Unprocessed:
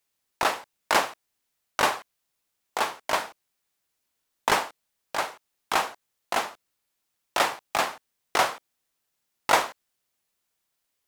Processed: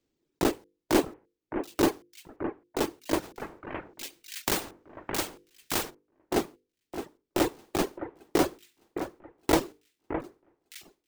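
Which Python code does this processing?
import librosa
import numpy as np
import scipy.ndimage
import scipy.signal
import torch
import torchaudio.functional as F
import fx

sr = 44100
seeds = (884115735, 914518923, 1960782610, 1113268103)

y = fx.block_float(x, sr, bits=3)
y = fx.hum_notches(y, sr, base_hz=50, count=10)
y = fx.sample_hold(y, sr, seeds[0], rate_hz=11000.0, jitter_pct=0)
y = fx.high_shelf(y, sr, hz=4000.0, db=5.5)
y = fx.echo_alternate(y, sr, ms=613, hz=2100.0, feedback_pct=56, wet_db=-9)
y = fx.dereverb_blind(y, sr, rt60_s=1.3)
y = fx.curve_eq(y, sr, hz=(220.0, 330.0, 630.0, 1100.0), db=(0, 10, -11, -17))
y = fx.spectral_comp(y, sr, ratio=2.0, at=(3.22, 5.89), fade=0.02)
y = y * 10.0 ** (6.5 / 20.0)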